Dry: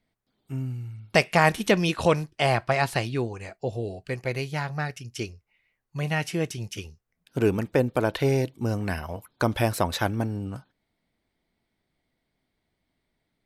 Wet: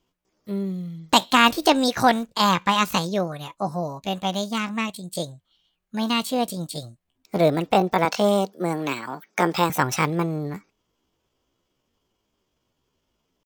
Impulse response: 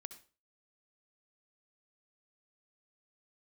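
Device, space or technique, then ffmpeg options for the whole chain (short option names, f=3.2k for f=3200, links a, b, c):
chipmunk voice: -filter_complex "[0:a]asetrate=66075,aresample=44100,atempo=0.66742,asettb=1/sr,asplit=3[a][b][c];[a]atrim=end=8.054[d];[b]atrim=start=8.05:end=9.7,asetpts=PTS-STARTPTS,afade=t=in:d=0.004:c=qsin,afade=t=out:st=1.646:d=0.004:c=qsin,highpass=f=190:w=0.5412,highpass=f=190:w=1.3066[e];[c]atrim=start=9.696[f];[d][e]acrossfade=d=0.004:c1=hsin:c2=qsin[g];[g][f]acrossfade=d=0.004:c1=qsin:c2=hsin,volume=3.5dB"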